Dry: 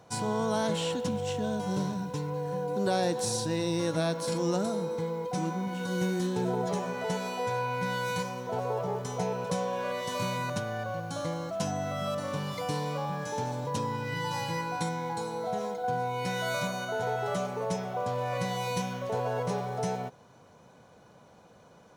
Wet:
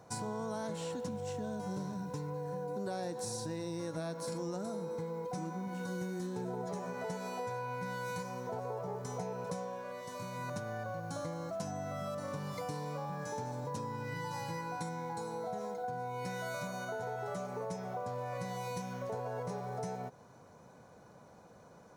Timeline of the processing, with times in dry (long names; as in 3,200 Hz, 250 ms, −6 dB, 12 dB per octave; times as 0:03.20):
0:09.58–0:10.58: duck −9 dB, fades 0.26 s
whole clip: parametric band 3,100 Hz −9 dB 0.67 octaves; downward compressor 4 to 1, threshold −36 dBFS; level −1 dB